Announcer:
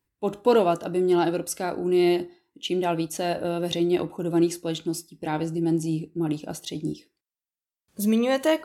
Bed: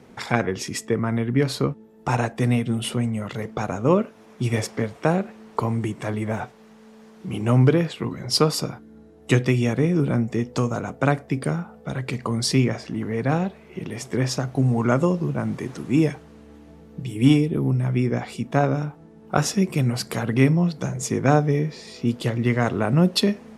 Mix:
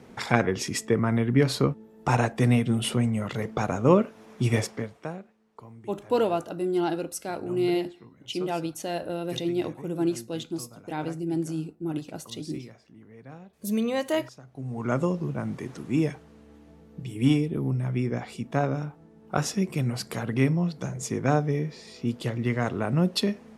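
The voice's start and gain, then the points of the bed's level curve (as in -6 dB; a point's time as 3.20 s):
5.65 s, -4.5 dB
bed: 4.56 s -0.5 dB
5.38 s -23 dB
14.42 s -23 dB
14.95 s -5.5 dB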